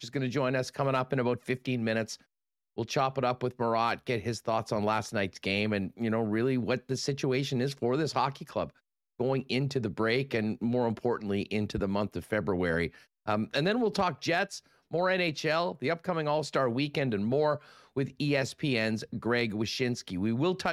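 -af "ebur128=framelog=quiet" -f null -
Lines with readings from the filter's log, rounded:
Integrated loudness:
  I:         -30.5 LUFS
  Threshold: -40.6 LUFS
Loudness range:
  LRA:         1.6 LU
  Threshold: -50.6 LUFS
  LRA low:   -31.4 LUFS
  LRA high:  -29.8 LUFS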